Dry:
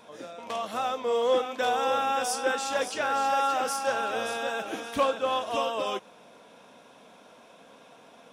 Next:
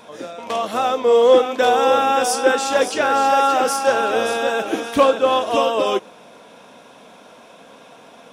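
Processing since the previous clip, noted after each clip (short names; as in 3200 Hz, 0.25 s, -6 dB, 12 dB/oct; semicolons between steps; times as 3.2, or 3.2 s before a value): dynamic EQ 360 Hz, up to +7 dB, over -43 dBFS, Q 1.3; gain +8.5 dB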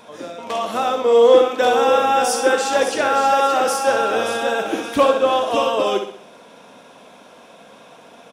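feedback echo 64 ms, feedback 43%, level -7.5 dB; gain -1 dB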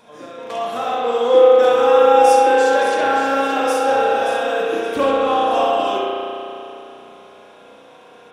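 spring tank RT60 3 s, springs 33 ms, chirp 35 ms, DRR -5 dB; gain -6 dB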